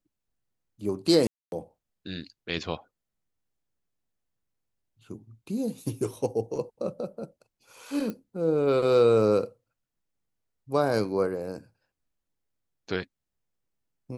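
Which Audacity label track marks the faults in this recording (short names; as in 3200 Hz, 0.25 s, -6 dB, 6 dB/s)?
1.270000	1.520000	gap 0.251 s
8.100000	8.100000	pop -22 dBFS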